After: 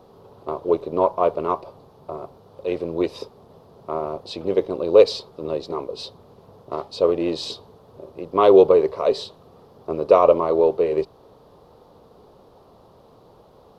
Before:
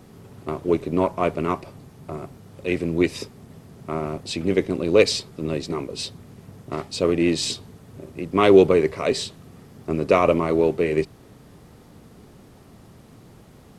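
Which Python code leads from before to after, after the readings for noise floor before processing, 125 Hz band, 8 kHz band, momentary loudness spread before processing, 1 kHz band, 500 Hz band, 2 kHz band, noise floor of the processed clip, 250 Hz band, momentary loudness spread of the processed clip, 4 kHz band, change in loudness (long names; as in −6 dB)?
−49 dBFS, −9.0 dB, below −10 dB, 18 LU, +3.0 dB, +3.0 dB, −10.0 dB, −52 dBFS, −4.5 dB, 21 LU, −4.0 dB, +1.5 dB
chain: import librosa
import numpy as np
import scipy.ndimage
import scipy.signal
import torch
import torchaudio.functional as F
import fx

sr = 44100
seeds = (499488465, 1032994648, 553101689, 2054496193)

y = fx.graphic_eq(x, sr, hz=(125, 250, 500, 1000, 2000, 4000, 8000), db=(-3, -4, 11, 11, -10, 8, -11))
y = y * librosa.db_to_amplitude(-6.5)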